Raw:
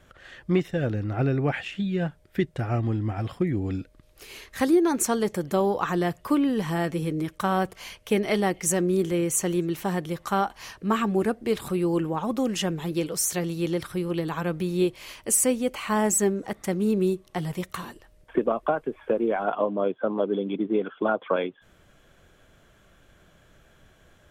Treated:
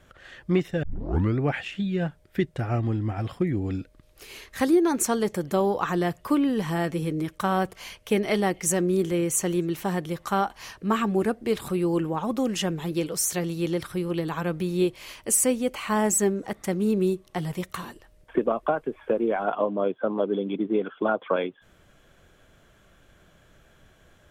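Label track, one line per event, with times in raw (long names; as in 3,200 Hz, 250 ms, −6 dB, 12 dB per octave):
0.830000	0.830000	tape start 0.56 s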